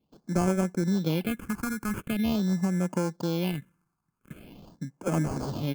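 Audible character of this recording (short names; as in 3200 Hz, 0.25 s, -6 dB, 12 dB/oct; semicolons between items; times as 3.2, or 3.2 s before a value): aliases and images of a low sample rate 1900 Hz, jitter 0%; phasing stages 4, 0.44 Hz, lowest notch 530–3800 Hz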